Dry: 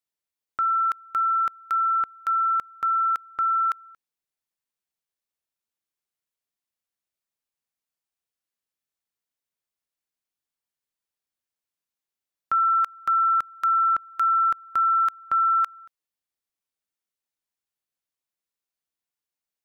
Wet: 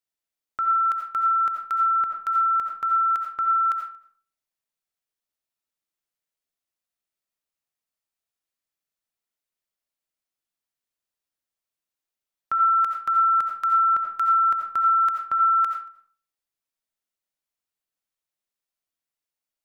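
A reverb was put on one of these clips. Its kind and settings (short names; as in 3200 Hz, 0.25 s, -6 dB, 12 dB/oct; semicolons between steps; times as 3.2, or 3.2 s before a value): digital reverb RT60 0.44 s, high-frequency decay 0.7×, pre-delay 45 ms, DRR 3 dB; gain -1.5 dB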